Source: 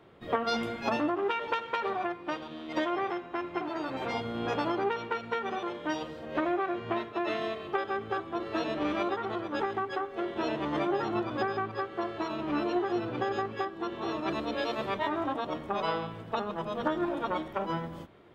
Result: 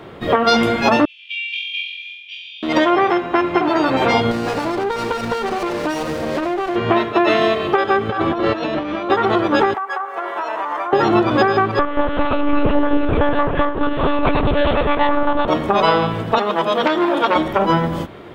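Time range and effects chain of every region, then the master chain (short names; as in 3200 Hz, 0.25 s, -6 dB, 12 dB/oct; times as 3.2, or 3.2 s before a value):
1.05–2.63 rippled Chebyshev high-pass 2300 Hz, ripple 9 dB + air absorption 260 m + flutter echo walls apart 3.9 m, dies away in 1 s
4.31–6.76 high shelf 4000 Hz +11.5 dB + compressor 10:1, threshold -36 dBFS + running maximum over 9 samples
8.09–9.1 notch 390 Hz + negative-ratio compressor -40 dBFS + air absorption 72 m
9.74–10.93 resonant high-pass 990 Hz, resonance Q 1.6 + bell 3800 Hz -14 dB 1.5 oct + compressor 12:1, threshold -38 dBFS
11.79–15.48 air absorption 88 m + darkening echo 82 ms, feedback 58%, low-pass 1300 Hz, level -10 dB + monotone LPC vocoder at 8 kHz 290 Hz
16.38–17.36 Bessel high-pass 320 Hz + bell 3300 Hz +5.5 dB 0.23 oct + core saturation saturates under 1800 Hz
whole clip: compressor 2:1, threshold -32 dBFS; maximiser +20.5 dB; gain -1 dB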